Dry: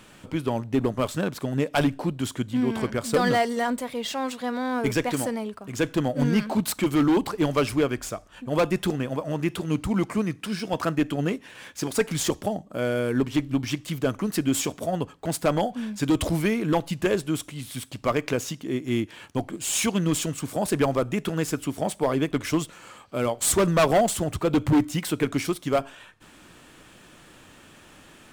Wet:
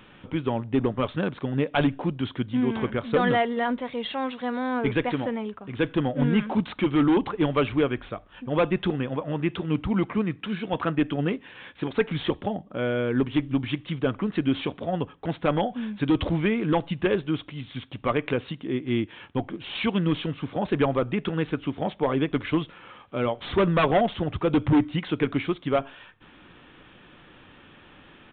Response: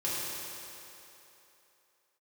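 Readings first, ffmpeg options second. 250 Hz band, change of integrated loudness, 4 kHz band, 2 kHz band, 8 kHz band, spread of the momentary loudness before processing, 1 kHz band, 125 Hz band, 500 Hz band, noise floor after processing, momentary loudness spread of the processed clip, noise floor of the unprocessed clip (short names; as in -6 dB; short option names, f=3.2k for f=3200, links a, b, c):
0.0 dB, -0.5 dB, -2.0 dB, 0.0 dB, under -40 dB, 8 LU, -0.5 dB, 0.0 dB, -0.5 dB, -52 dBFS, 8 LU, -51 dBFS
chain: -af "bandreject=f=640:w=12,aresample=8000,aresample=44100"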